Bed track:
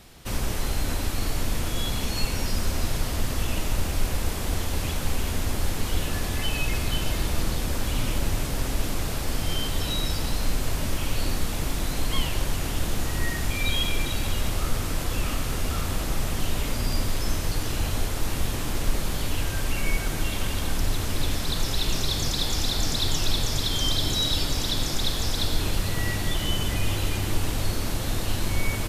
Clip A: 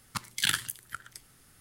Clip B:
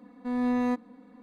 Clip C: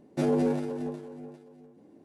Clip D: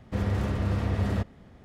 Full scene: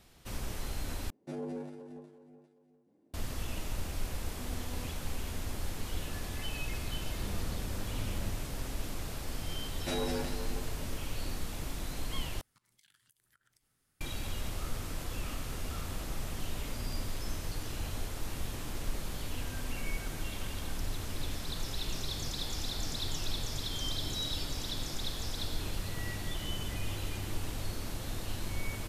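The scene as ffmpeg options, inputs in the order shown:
-filter_complex "[3:a]asplit=2[s0][s1];[2:a]asplit=2[s2][s3];[0:a]volume=0.282[s4];[s2]acompressor=threshold=0.0398:ratio=6:attack=3.2:release=140:knee=1:detection=peak[s5];[s1]tiltshelf=f=770:g=-9[s6];[1:a]acompressor=threshold=0.00398:ratio=6:attack=3.2:release=140:knee=1:detection=peak[s7];[s3]acompressor=threshold=0.01:ratio=6:attack=3.2:release=140:knee=1:detection=peak[s8];[s4]asplit=3[s9][s10][s11];[s9]atrim=end=1.104[s12];[s0]atrim=end=2.04,asetpts=PTS-STARTPTS,volume=0.2[s13];[s10]atrim=start=3.136:end=12.414[s14];[s7]atrim=end=1.6,asetpts=PTS-STARTPTS,volume=0.133[s15];[s11]atrim=start=14.006[s16];[s5]atrim=end=1.22,asetpts=PTS-STARTPTS,volume=0.141,afade=t=in:d=0.004:c=hsin,afade=t=out:st=1.216:d=0.004:c=hsin,adelay=182133S[s17];[4:a]atrim=end=1.64,asetpts=PTS-STARTPTS,volume=0.158,afade=t=in:d=0.004:c=hsin,afade=t=out:st=1.636:d=0.004:c=hsin,adelay=7080[s18];[s6]atrim=end=2.04,asetpts=PTS-STARTPTS,volume=0.562,afade=t=in:d=0.004:c=hsin,afade=t=out:st=2.036:d=0.004:c=hsin,adelay=9690[s19];[s8]atrim=end=1.22,asetpts=PTS-STARTPTS,volume=0.299,afade=t=in:d=0.004:c=hsin,afade=t=out:st=1.216:d=0.004:c=hsin,adelay=841428S[s20];[s12][s13]acrossfade=d=0.004:c1=hsin:c2=hsin[s21];[s21][s14]acrossfade=d=0.004:c1=hsin:c2=hsin[s22];[s22][s15]acrossfade=d=0.004:c1=hsin:c2=hsin[s23];[s23][s16]acrossfade=d=0.004:c1=hsin:c2=hsin[s24];[s24][s17][s18][s19][s20]amix=inputs=5:normalize=0"

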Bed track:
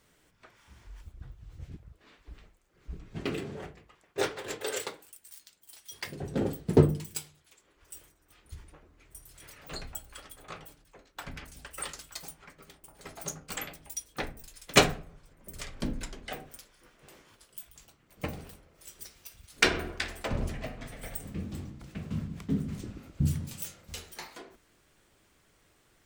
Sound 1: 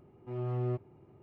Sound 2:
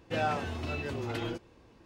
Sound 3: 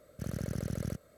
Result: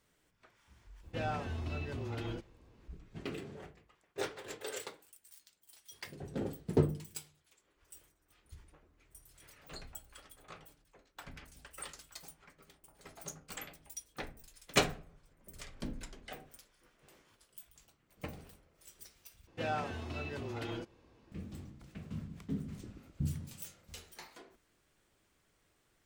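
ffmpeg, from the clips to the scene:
-filter_complex "[2:a]asplit=2[s0][s1];[0:a]volume=0.398[s2];[s0]lowshelf=f=130:g=10[s3];[s2]asplit=2[s4][s5];[s4]atrim=end=19.474[s6];[s1]atrim=end=1.85,asetpts=PTS-STARTPTS,volume=0.531[s7];[s5]atrim=start=21.316[s8];[s3]atrim=end=1.85,asetpts=PTS-STARTPTS,volume=0.422,afade=t=in:d=0.004:c=hsin,afade=t=out:st=1.846:d=0.004:c=hsin,adelay=1030[s9];[s6][s7]acrossfade=d=0.004:c1=hsin:c2=hsin[s10];[s10][s8]acrossfade=d=0.004:c1=hsin:c2=hsin[s11];[s11][s9]amix=inputs=2:normalize=0"

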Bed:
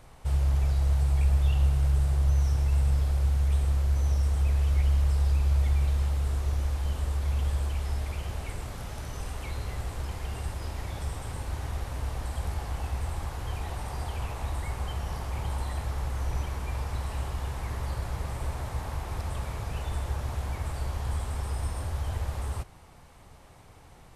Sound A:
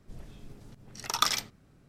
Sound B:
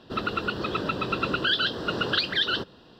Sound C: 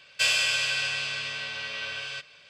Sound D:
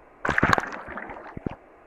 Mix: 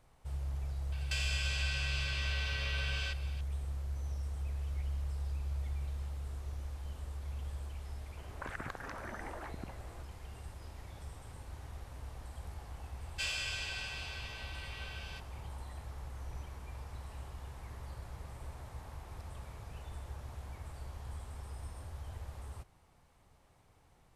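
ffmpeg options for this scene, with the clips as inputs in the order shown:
-filter_complex "[3:a]asplit=2[s0][s1];[0:a]volume=0.211[s2];[s0]acompressor=threshold=0.02:ratio=6:attack=3.2:release=140:knee=1:detection=peak[s3];[4:a]acompressor=threshold=0.0178:ratio=6:attack=3.2:release=140:knee=1:detection=peak[s4];[s3]atrim=end=2.49,asetpts=PTS-STARTPTS,volume=0.891,afade=t=in:d=0.004:c=hsin,afade=t=out:st=2.486:d=0.004:c=hsin,adelay=920[s5];[s4]atrim=end=1.86,asetpts=PTS-STARTPTS,volume=0.596,afade=t=in:d=0.004:c=hsin,afade=t=out:st=1.856:d=0.004:c=hsin,adelay=8170[s6];[s1]atrim=end=2.49,asetpts=PTS-STARTPTS,volume=0.211,afade=t=in:d=0.004:c=hsin,afade=t=out:st=2.486:d=0.004:c=hsin,adelay=12990[s7];[s2][s5][s6][s7]amix=inputs=4:normalize=0"

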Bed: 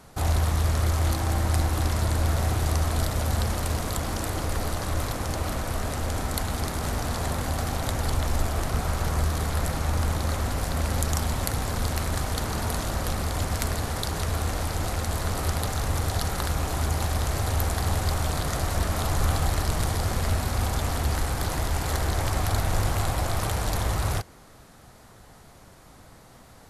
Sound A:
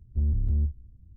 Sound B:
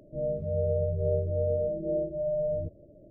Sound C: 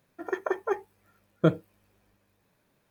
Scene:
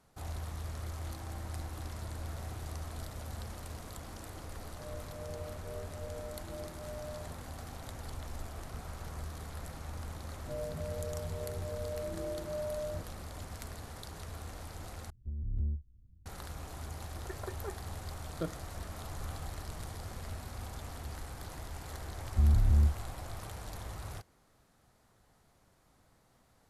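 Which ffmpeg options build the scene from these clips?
-filter_complex "[2:a]asplit=2[s0][s1];[1:a]asplit=2[s2][s3];[0:a]volume=0.141[s4];[s1]alimiter=level_in=1.33:limit=0.0631:level=0:latency=1:release=71,volume=0.75[s5];[s2]tremolo=f=2:d=0.58[s6];[s4]asplit=2[s7][s8];[s7]atrim=end=15.104[s9];[s6]atrim=end=1.16,asetpts=PTS-STARTPTS,volume=0.422[s10];[s8]atrim=start=16.256[s11];[s0]atrim=end=3.1,asetpts=PTS-STARTPTS,volume=0.15,afade=t=in:d=0.004:c=hsin,afade=t=out:st=3.096:d=0.004:c=hsin,adelay=4640[s12];[s5]atrim=end=3.1,asetpts=PTS-STARTPTS,volume=0.501,afade=t=in:d=0.004:c=hsin,afade=t=out:st=3.096:d=0.004:c=hsin,adelay=455994S[s13];[3:a]atrim=end=2.9,asetpts=PTS-STARTPTS,volume=0.178,afade=t=in:d=0.004:c=hsin,afade=t=out:st=2.896:d=0.004:c=hsin,adelay=16970[s14];[s3]atrim=end=1.16,asetpts=PTS-STARTPTS,afade=t=in:d=0.004:c=hsin,afade=t=out:st=1.156:d=0.004:c=hsin,adelay=22210[s15];[s9][s10]acrossfade=d=0.004:c1=hsin:c2=hsin[s16];[s16][s11]acrossfade=d=0.004:c1=hsin:c2=hsin[s17];[s17][s12][s13][s14][s15]amix=inputs=5:normalize=0"

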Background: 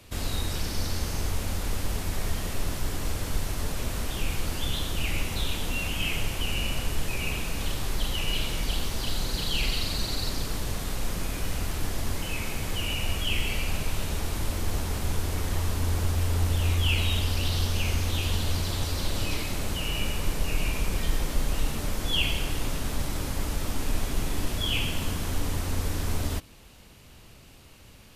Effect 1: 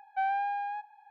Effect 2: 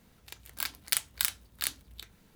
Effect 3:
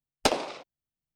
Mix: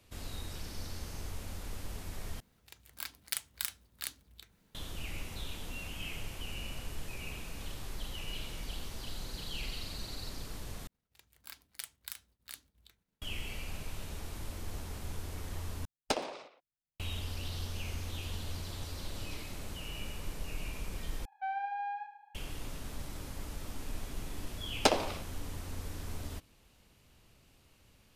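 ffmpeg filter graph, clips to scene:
-filter_complex "[2:a]asplit=2[s0][s1];[3:a]asplit=2[s2][s3];[0:a]volume=0.237[s4];[s1]agate=range=0.0224:threshold=0.00178:ratio=3:release=100:detection=peak[s5];[s2]asplit=2[s6][s7];[s7]adelay=120,highpass=300,lowpass=3400,asoftclip=type=hard:threshold=0.075,volume=0.316[s8];[s6][s8]amix=inputs=2:normalize=0[s9];[1:a]aecho=1:1:74|148|222|296|370|444:0.299|0.164|0.0903|0.0497|0.0273|0.015[s10];[s4]asplit=5[s11][s12][s13][s14][s15];[s11]atrim=end=2.404[s16];[s0]atrim=end=2.35,asetpts=PTS-STARTPTS,volume=0.422[s17];[s12]atrim=start=4.746:end=10.874[s18];[s5]atrim=end=2.35,asetpts=PTS-STARTPTS,volume=0.178[s19];[s13]atrim=start=13.216:end=15.854[s20];[s9]atrim=end=1.15,asetpts=PTS-STARTPTS,volume=0.376[s21];[s14]atrim=start=16.996:end=21.254[s22];[s10]atrim=end=1.1,asetpts=PTS-STARTPTS,volume=0.447[s23];[s15]atrim=start=22.346[s24];[s3]atrim=end=1.15,asetpts=PTS-STARTPTS,volume=0.794,afade=t=in:d=0.004:c=hsin,afade=t=out:st=1.146:d=0.004:c=hsin,adelay=24600[s25];[s16][s17]acrossfade=d=0.004:c1=hsin:c2=hsin[s26];[s26][s18]acrossfade=d=0.004:c1=hsin:c2=hsin[s27];[s27][s19]acrossfade=d=0.004:c1=hsin:c2=hsin[s28];[s28][s20]acrossfade=d=0.004:c1=hsin:c2=hsin[s29];[s29][s21]acrossfade=d=0.004:c1=hsin:c2=hsin[s30];[s30][s22]acrossfade=d=0.004:c1=hsin:c2=hsin[s31];[s31][s23]acrossfade=d=0.004:c1=hsin:c2=hsin[s32];[s32][s24]acrossfade=d=0.004:c1=hsin:c2=hsin[s33];[s33][s25]amix=inputs=2:normalize=0"

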